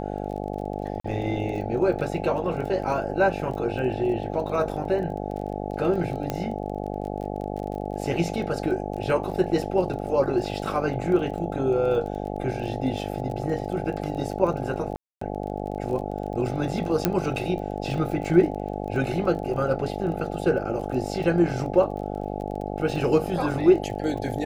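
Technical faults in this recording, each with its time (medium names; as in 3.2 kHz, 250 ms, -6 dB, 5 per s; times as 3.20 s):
buzz 50 Hz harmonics 17 -31 dBFS
crackle 24 per s -34 dBFS
1.00–1.04 s: dropout 44 ms
6.30 s: pop -13 dBFS
14.96–15.21 s: dropout 254 ms
17.05 s: pop -5 dBFS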